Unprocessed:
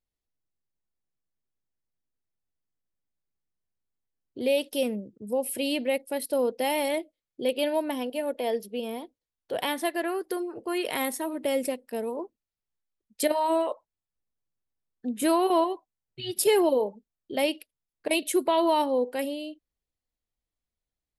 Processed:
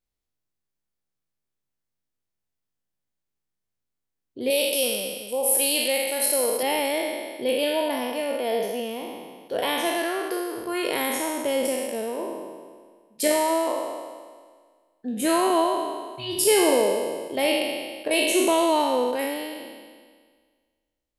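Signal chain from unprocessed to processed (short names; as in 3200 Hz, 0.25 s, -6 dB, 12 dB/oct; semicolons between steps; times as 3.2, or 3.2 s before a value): spectral trails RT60 1.68 s; 4.5–6.63 tone controls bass -14 dB, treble +10 dB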